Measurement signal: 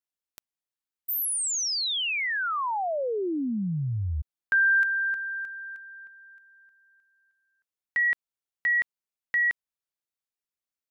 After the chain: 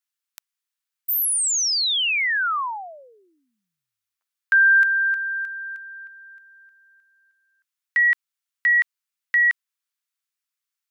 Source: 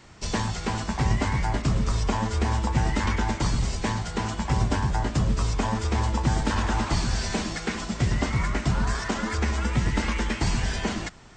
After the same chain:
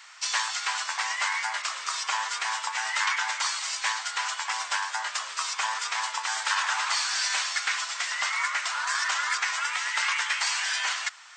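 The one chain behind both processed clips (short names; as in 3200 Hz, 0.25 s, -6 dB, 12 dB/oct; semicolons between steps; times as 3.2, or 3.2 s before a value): HPF 1100 Hz 24 dB/oct; gain +6.5 dB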